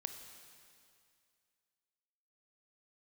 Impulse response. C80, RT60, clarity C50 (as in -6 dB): 8.0 dB, 2.3 s, 7.0 dB